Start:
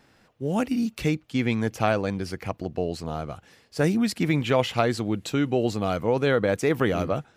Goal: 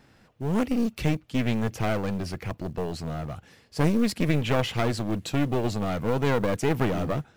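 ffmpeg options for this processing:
-af "acrusher=bits=7:mode=log:mix=0:aa=0.000001,bass=f=250:g=5,treble=f=4k:g=-1,aeval=exprs='clip(val(0),-1,0.0398)':c=same"

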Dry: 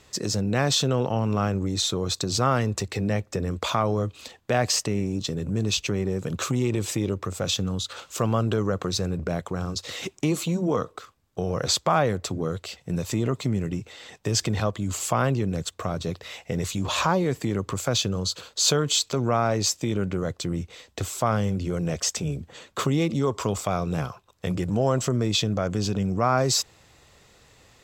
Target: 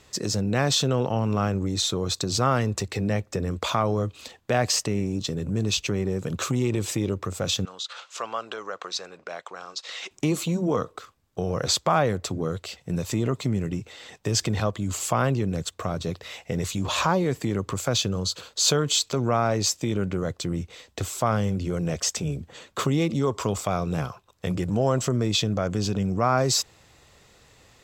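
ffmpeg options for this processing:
-filter_complex "[0:a]asettb=1/sr,asplit=3[a][b][c];[a]atrim=end=7.654[d];[b]atrim=start=7.65:end=10.11,asetpts=PTS-STARTPTS,afade=t=in:d=0.004:c=qsin,afade=t=out:st=2.456:d=0.004:c=qsin,highpass=790,lowpass=5.8k[e];[c]atrim=start=10.106[f];[d][e]acrossfade=d=0.004:c1=hsin:c2=qsin[g];[g][f]acrossfade=d=0.004:c1=qsin:c2=hsin"

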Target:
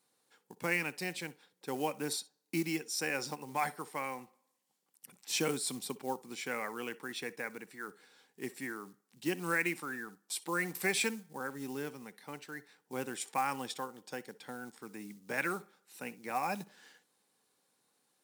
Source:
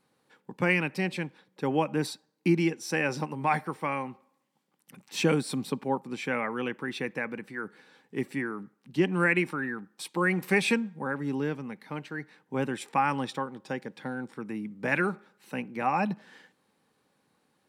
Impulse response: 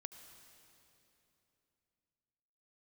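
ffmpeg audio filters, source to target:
-filter_complex "[0:a]asetrate=42777,aresample=44100,acrusher=bits=7:mode=log:mix=0:aa=0.000001,bass=f=250:g=-8,treble=f=4k:g=12[a];[1:a]atrim=start_sample=2205,atrim=end_sample=3528,asetrate=52920,aresample=44100[b];[a][b]afir=irnorm=-1:irlink=0"

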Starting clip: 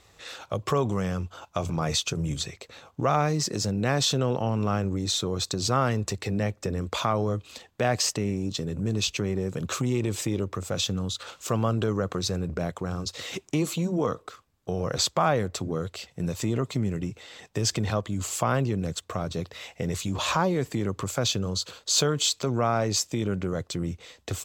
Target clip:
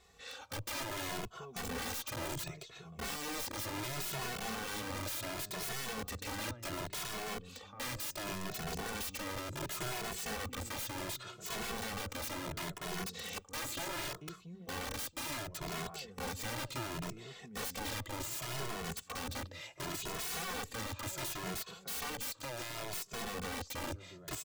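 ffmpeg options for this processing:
-filter_complex "[0:a]alimiter=limit=-15dB:level=0:latency=1:release=476,asettb=1/sr,asplit=3[a][b][c];[a]atrim=end=22.304[d];[b]atrim=start=22.3:end=22.93,asetpts=PTS-STARTPTS,afade=t=in:d=0.004:c=qsin,afade=t=out:st=0.626:d=0.004:c=qsin,acompressor=threshold=-28dB:ratio=10[e];[c]atrim=start=22.926[f];[d][e]acrossfade=d=0.004:c1=hsin:c2=qsin[g];[g][f]acrossfade=d=0.004:c1=qsin:c2=hsin,asplit=2[h][i];[i]adelay=679,lowpass=f=3.2k:p=1,volume=-18dB,asplit=2[j][k];[k]adelay=679,lowpass=f=3.2k:p=1,volume=0.36,asplit=2[l][m];[m]adelay=679,lowpass=f=3.2k:p=1,volume=0.36[n];[h][j][l][n]amix=inputs=4:normalize=0,aeval=exprs='(mod(23.7*val(0)+1,2)-1)/23.7':c=same,asplit=2[o][p];[p]adelay=2.3,afreqshift=0.69[q];[o][q]amix=inputs=2:normalize=1,volume=-4dB"

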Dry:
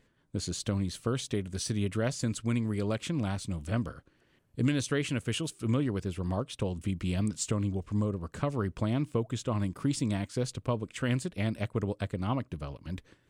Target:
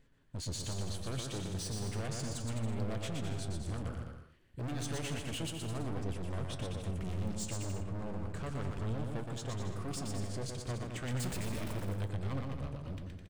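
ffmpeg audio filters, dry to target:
-filter_complex "[0:a]asettb=1/sr,asplit=3[a][b][c];[a]atrim=end=11.074[d];[b]atrim=start=11.07:end=11.73,asetpts=PTS-STARTPTS,afade=t=in:d=0.004:c=qsin,afade=t=out:st=0.656:d=0.004:c=qsin,aeval=exprs='val(0)+0.5*0.02*sgn(val(0))':c=same[e];[c]atrim=start=11.726[f];[d][e]acrossfade=d=0.004:c1=hsin:c2=qsin[g];[g][f]acrossfade=d=0.004:c1=qsin:c2=hsin,lowshelf=f=77:g=12,volume=33dB,asoftclip=hard,volume=-33dB,flanger=delay=7.2:depth=9.4:regen=75:speed=0.32:shape=sinusoidal,aecho=1:1:120|210|277.5|328.1|366.1:0.631|0.398|0.251|0.158|0.1"

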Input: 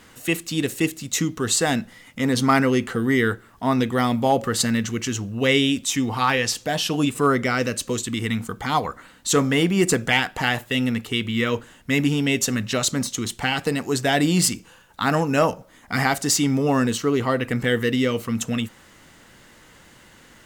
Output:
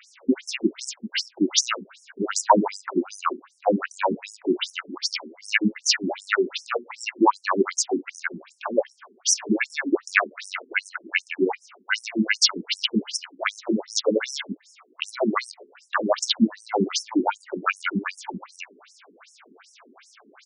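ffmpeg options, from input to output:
-af "asetrate=34006,aresample=44100,atempo=1.29684,afftfilt=real='re*between(b*sr/1024,290*pow(7600/290,0.5+0.5*sin(2*PI*2.6*pts/sr))/1.41,290*pow(7600/290,0.5+0.5*sin(2*PI*2.6*pts/sr))*1.41)':imag='im*between(b*sr/1024,290*pow(7600/290,0.5+0.5*sin(2*PI*2.6*pts/sr))/1.41,290*pow(7600/290,0.5+0.5*sin(2*PI*2.6*pts/sr))*1.41)':win_size=1024:overlap=0.75,volume=7dB"

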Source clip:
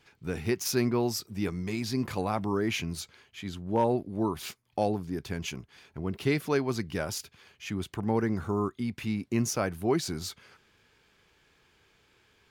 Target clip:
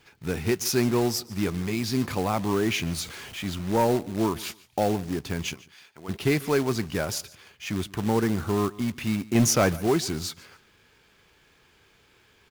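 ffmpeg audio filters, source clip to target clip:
-filter_complex "[0:a]asettb=1/sr,asplit=3[a][b][c];[a]atrim=end=2.864[d];[b]atrim=start=2.86:end=3.72,asetpts=PTS-STARTPTS,afade=t=in:d=0.004:c=qsin,afade=t=out:st=0.856:d=0.004:c=qsin,aeval=exprs='val(0)+0.5*0.00841*sgn(val(0))':c=same[e];[c]atrim=start=3.716[f];[d][e]acrossfade=d=0.004:c1=hsin:c2=qsin[g];[g][f]acrossfade=d=0.004:c1=qsin:c2=hsin,asplit=3[h][i][j];[h]afade=t=out:st=5.53:d=0.02[k];[i]highpass=f=1.4k:p=1,afade=t=in:st=5.53:d=0.02,afade=t=out:st=6.08:d=0.02[l];[j]afade=t=in:st=6.08:d=0.02[m];[k][l][m]amix=inputs=3:normalize=0,asettb=1/sr,asplit=3[n][o][p];[n]atrim=end=9.354[q];[o]atrim=start=9.35:end=9.77,asetpts=PTS-STARTPTS,afade=t=in:d=0.004:c=qsin,afade=t=out:st=0.416:d=0.004:c=qsin,acontrast=55[r];[p]atrim=start=9.766[s];[q][r]acrossfade=d=0.004:c1=hsin:c2=qsin[t];[t][s]acrossfade=d=0.004:c1=qsin:c2=hsin,acrusher=bits=3:mode=log:mix=0:aa=0.000001,asoftclip=type=tanh:threshold=-17dB,aecho=1:1:146|292:0.0891|0.0205,volume=4.5dB"

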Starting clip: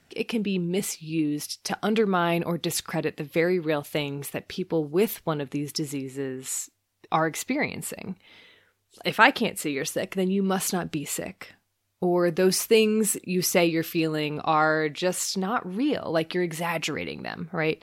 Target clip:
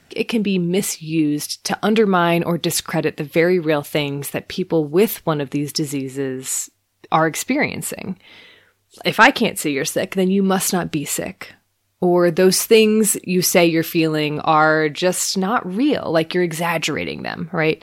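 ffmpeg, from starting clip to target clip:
-af "aeval=exprs='0.891*sin(PI/2*1.58*val(0)/0.891)':c=same"

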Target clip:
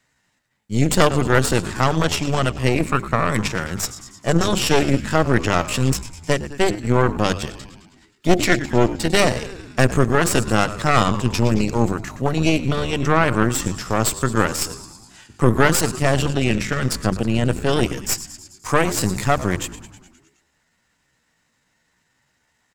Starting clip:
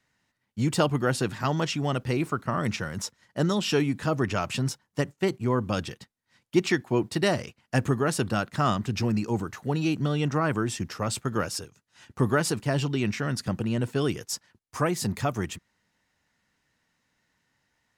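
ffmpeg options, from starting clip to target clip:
-filter_complex "[0:a]equalizer=f=7.6k:t=o:w=0.22:g=8,bandreject=f=50:t=h:w=6,bandreject=f=100:t=h:w=6,bandreject=f=150:t=h:w=6,bandreject=f=200:t=h:w=6,bandreject=f=250:t=h:w=6,bandreject=f=300:t=h:w=6,bandreject=f=350:t=h:w=6,bandreject=f=400:t=h:w=6,asplit=8[a][b][c][d][e][f][g][h];[b]adelay=83,afreqshift=-72,volume=-12.5dB[i];[c]adelay=166,afreqshift=-144,volume=-16.5dB[j];[d]adelay=249,afreqshift=-216,volume=-20.5dB[k];[e]adelay=332,afreqshift=-288,volume=-24.5dB[l];[f]adelay=415,afreqshift=-360,volume=-28.6dB[m];[g]adelay=498,afreqshift=-432,volume=-32.6dB[n];[h]adelay=581,afreqshift=-504,volume=-36.6dB[o];[a][i][j][k][l][m][n][o]amix=inputs=8:normalize=0,aeval=exprs='0.355*(cos(1*acos(clip(val(0)/0.355,-1,1)))-cos(1*PI/2))+0.158*(cos(4*acos(clip(val(0)/0.355,-1,1)))-cos(4*PI/2))':c=same,asplit=2[p][q];[q]asoftclip=type=tanh:threshold=-14dB,volume=-4dB[r];[p][r]amix=inputs=2:normalize=0,atempo=0.79,volume=2dB"

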